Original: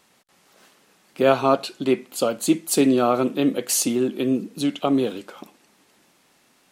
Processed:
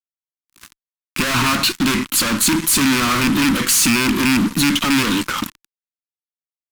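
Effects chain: rattling part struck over -26 dBFS, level -12 dBFS; fuzz box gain 41 dB, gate -47 dBFS; band shelf 560 Hz -14.5 dB 1.3 oct

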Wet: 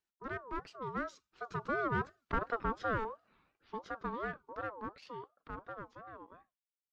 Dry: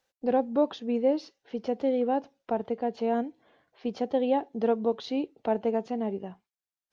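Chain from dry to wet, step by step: one diode to ground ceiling -29 dBFS; Doppler pass-by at 2.45, 30 m/s, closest 19 m; ring modulator with a swept carrier 810 Hz, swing 20%, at 2.8 Hz

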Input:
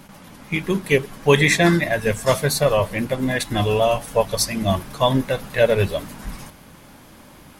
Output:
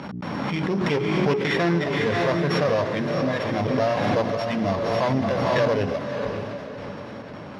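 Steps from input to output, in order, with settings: sample sorter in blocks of 8 samples; step gate "x.xxxxxxxxxx.xxx" 135 bpm -60 dB; in parallel at +1.5 dB: upward compressor, threshold -19 dBFS; on the sum: notches 60/120/180/240/300/360/420 Hz; one-sided clip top -15.5 dBFS, bottom -4.5 dBFS; BPF 120–2500 Hz; on a send: diffused feedback echo 0.568 s, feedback 43%, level -6 dB; on the sum: backwards sustainer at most 20 dB/s; gain -8.5 dB

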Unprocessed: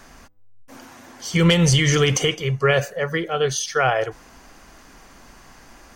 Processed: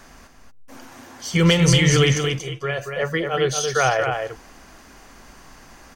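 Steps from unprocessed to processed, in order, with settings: 2.15–2.96 resonator 340 Hz, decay 0.16 s, harmonics all, mix 70%; on a send: echo 0.234 s -5.5 dB

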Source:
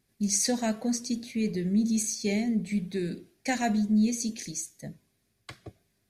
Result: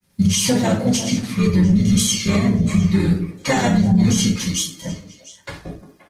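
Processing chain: high shelf 8800 Hz +4 dB; grains, spray 19 ms, pitch spread up and down by 0 st; delay with a stepping band-pass 0.175 s, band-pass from 310 Hz, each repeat 1.4 oct, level -9 dB; harmoniser -12 st -3 dB, -3 st -8 dB; reverb RT60 0.45 s, pre-delay 3 ms, DRR -4 dB; maximiser +13.5 dB; gain -6.5 dB; Opus 20 kbps 48000 Hz

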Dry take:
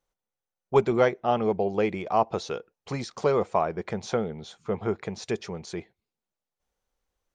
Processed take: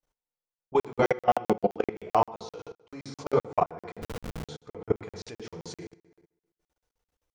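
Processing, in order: FDN reverb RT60 0.92 s, low-frequency decay 0.95×, high-frequency decay 0.75×, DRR -1 dB; level quantiser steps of 20 dB; 1.02–1.77 comb 5.5 ms, depth 75%; 4.02–4.45 Schmitt trigger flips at -36 dBFS; crackling interface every 0.13 s, samples 2048, zero, from 0.54

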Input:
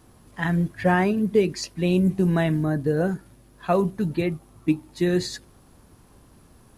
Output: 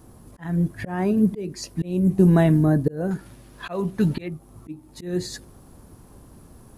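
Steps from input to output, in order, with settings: auto swell 0.395 s; bell 2800 Hz -9 dB 2.5 oct, from 3.11 s +2.5 dB, from 4.28 s -7.5 dB; gain +6 dB

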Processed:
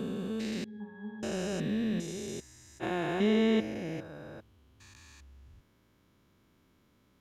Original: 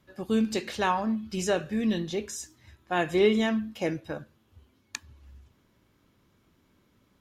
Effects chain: stepped spectrum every 0.4 s; 0.64–1.23 octave resonator G#, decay 0.4 s; attack slew limiter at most 430 dB/s

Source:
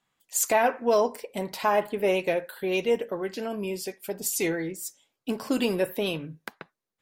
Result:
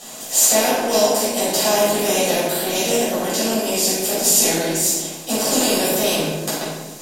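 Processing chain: per-bin compression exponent 0.4; resonant high shelf 3100 Hz +11 dB, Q 1.5; shoebox room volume 470 m³, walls mixed, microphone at 6.2 m; gain -12.5 dB

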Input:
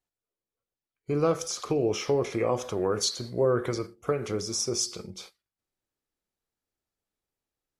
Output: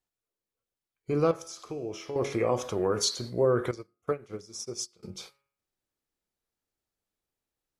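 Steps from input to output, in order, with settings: 1.31–2.16 resonator 330 Hz, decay 1 s, mix 70%; de-hum 138.8 Hz, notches 21; 3.71–5.03 upward expander 2.5:1, over -39 dBFS

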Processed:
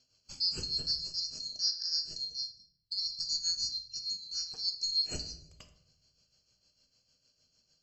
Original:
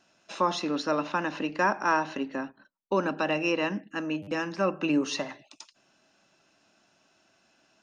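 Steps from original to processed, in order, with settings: band-swap scrambler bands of 4000 Hz; LPF 5700 Hz 12 dB/oct; band shelf 1400 Hz -14 dB; in parallel at -2 dB: limiter -25 dBFS, peak gain reduction 10.5 dB; on the sum: tremolo 6.6 Hz, depth 66%; on a send at -7 dB: reverb RT60 0.80 s, pre-delay 6 ms; on the sum: gain -6 dB

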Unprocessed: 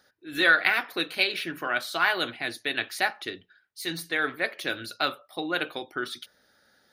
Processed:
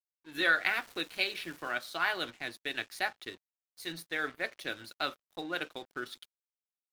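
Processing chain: crossover distortion -45 dBFS; 0.66–1.71 crackle 570/s -36 dBFS; gain -6.5 dB

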